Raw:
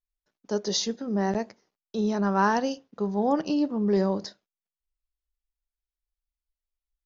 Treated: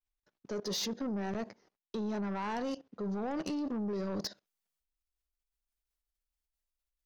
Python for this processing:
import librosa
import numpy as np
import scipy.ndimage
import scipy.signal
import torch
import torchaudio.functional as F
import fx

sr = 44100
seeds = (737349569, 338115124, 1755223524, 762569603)

y = fx.high_shelf(x, sr, hz=5400.0, db=fx.steps((0.0, -9.0), (3.11, 2.5)))
y = fx.level_steps(y, sr, step_db=19)
y = 10.0 ** (-37.5 / 20.0) * np.tanh(y / 10.0 ** (-37.5 / 20.0))
y = y * librosa.db_to_amplitude(7.0)